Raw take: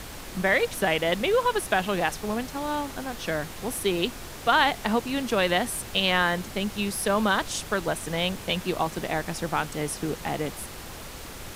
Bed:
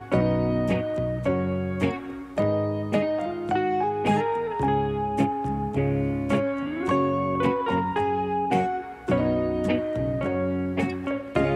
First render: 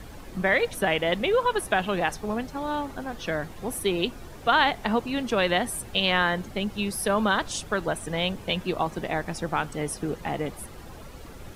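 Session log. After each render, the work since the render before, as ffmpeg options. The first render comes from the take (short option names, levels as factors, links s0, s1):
-af "afftdn=nr=11:nf=-40"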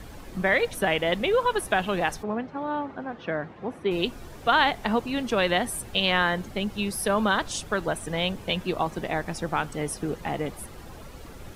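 -filter_complex "[0:a]asplit=3[s0][s1][s2];[s0]afade=t=out:st=2.22:d=0.02[s3];[s1]highpass=130,lowpass=2100,afade=t=in:st=2.22:d=0.02,afade=t=out:st=3.9:d=0.02[s4];[s2]afade=t=in:st=3.9:d=0.02[s5];[s3][s4][s5]amix=inputs=3:normalize=0"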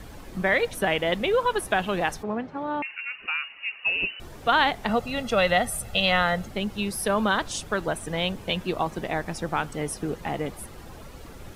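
-filter_complex "[0:a]asettb=1/sr,asplit=3[s0][s1][s2];[s0]atrim=end=2.824[s3];[s1]atrim=start=2.82:end=4.2,asetpts=PTS-STARTPTS,afade=t=in:d=0.004:c=qsin,afade=t=out:st=1.376:d=0.004:c=qsin,lowpass=f=2600:t=q:w=0.5098,lowpass=f=2600:t=q:w=0.6013,lowpass=f=2600:t=q:w=0.9,lowpass=f=2600:t=q:w=2.563,afreqshift=-3000[s4];[s2]atrim=start=4.196[s5];[s3][s4]acrossfade=d=0.004:c1=hsin:c2=qsin[s6];[s6][s5]acrossfade=d=0.004:c1=qsin:c2=hsin,asettb=1/sr,asplit=3[s7][s8][s9];[s7]atrim=end=4.894[s10];[s8]atrim=start=4.89:end=6.47,asetpts=PTS-STARTPTS,afade=t=in:d=0.004:c=qsin,afade=t=out:st=1.576:d=0.004:c=qsin,aecho=1:1:1.5:0.65,atrim=end_sample=69678[s11];[s9]atrim=start=6.466[s12];[s10][s11]acrossfade=d=0.004:c1=hsin:c2=qsin[s13];[s13][s12]acrossfade=d=0.004:c1=qsin:c2=hsin"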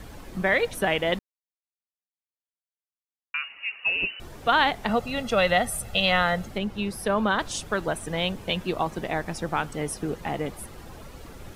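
-filter_complex "[0:a]asettb=1/sr,asplit=3[s0][s1][s2];[s0]atrim=end=6.584[s3];[s1]atrim=start=6.58:end=7.39,asetpts=PTS-STARTPTS,afade=t=in:d=0.004:c=qsin,afade=t=out:st=0.806:d=0.004:c=qsin,highshelf=f=4200:g=-8[s4];[s2]atrim=start=7.386[s5];[s3][s4]acrossfade=d=0.004:c1=hsin:c2=qsin[s6];[s6][s5]acrossfade=d=0.004:c1=qsin:c2=hsin,asplit=3[s7][s8][s9];[s7]atrim=end=1.19,asetpts=PTS-STARTPTS,afade=t=out:st=1.186:d=0.004:c=hsin[s10];[s8]atrim=start=1.19:end=3.34,asetpts=PTS-STARTPTS,volume=0[s11];[s9]atrim=start=3.34,asetpts=PTS-STARTPTS,afade=t=in:d=0.004:c=hsin[s12];[s10][s11][s12]concat=n=3:v=0:a=1"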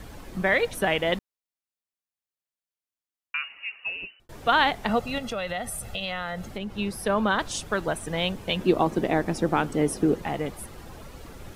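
-filter_complex "[0:a]asettb=1/sr,asplit=3[s0][s1][s2];[s0]atrim=end=5.184[s3];[s1]atrim=start=5.18:end=6.77,asetpts=PTS-STARTPTS,afade=t=in:d=0.004:c=qsin,afade=t=out:st=1.586:d=0.004:c=qsin,acompressor=threshold=0.0316:ratio=3:attack=3.2:release=140:knee=1:detection=peak[s4];[s2]atrim=start=6.766[s5];[s3][s4]acrossfade=d=0.004:c1=hsin:c2=qsin[s6];[s6][s5]acrossfade=d=0.004:c1=qsin:c2=hsin,asettb=1/sr,asplit=3[s7][s8][s9];[s7]atrim=end=8.594[s10];[s8]atrim=start=8.59:end=10.22,asetpts=PTS-STARTPTS,afade=t=in:d=0.004:c=qsin,afade=t=out:st=1.626:d=0.004:c=qsin,equalizer=f=310:t=o:w=1.7:g=9.5[s11];[s9]atrim=start=10.216[s12];[s10][s11]acrossfade=d=0.004:c1=hsin:c2=qsin[s13];[s13][s12]acrossfade=d=0.004:c1=qsin:c2=hsin,asplit=2[s14][s15];[s14]atrim=end=4.29,asetpts=PTS-STARTPTS,afade=t=out:st=3.41:d=0.88[s16];[s15]atrim=start=4.29,asetpts=PTS-STARTPTS,afade=t=in:d=0.004:c=hsin[s17];[s16][s17]concat=n=2:v=0:a=1"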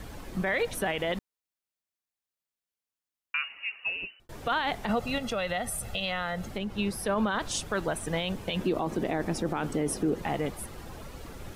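-af "alimiter=limit=0.112:level=0:latency=1:release=44"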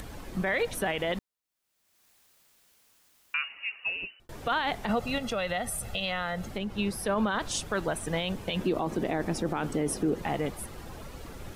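-af "acompressor=mode=upward:threshold=0.00891:ratio=2.5"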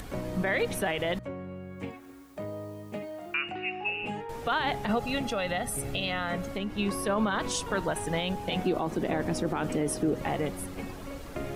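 -filter_complex "[1:a]volume=0.2[s0];[0:a][s0]amix=inputs=2:normalize=0"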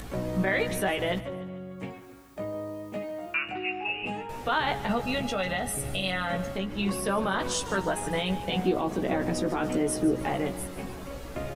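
-filter_complex "[0:a]asplit=2[s0][s1];[s1]adelay=16,volume=0.596[s2];[s0][s2]amix=inputs=2:normalize=0,aecho=1:1:148|296|444|592:0.158|0.0761|0.0365|0.0175"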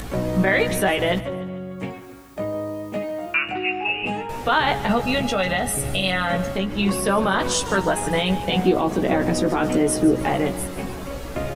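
-af "volume=2.37"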